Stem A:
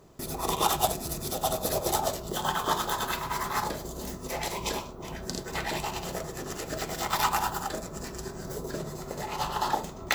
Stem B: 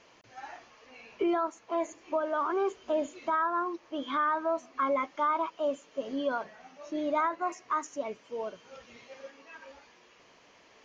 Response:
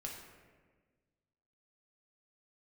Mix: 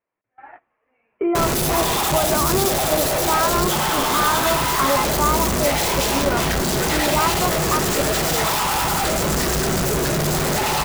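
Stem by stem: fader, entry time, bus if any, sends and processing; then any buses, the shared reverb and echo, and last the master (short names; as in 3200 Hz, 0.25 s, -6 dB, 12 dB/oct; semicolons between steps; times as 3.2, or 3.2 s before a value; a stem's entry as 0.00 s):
-2.5 dB, 1.35 s, send -7.5 dB, infinite clipping
-6.0 dB, 0.00 s, send -11 dB, steep low-pass 2300 Hz 36 dB/oct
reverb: on, RT60 1.5 s, pre-delay 4 ms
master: gate -49 dBFS, range -21 dB; AGC gain up to 12 dB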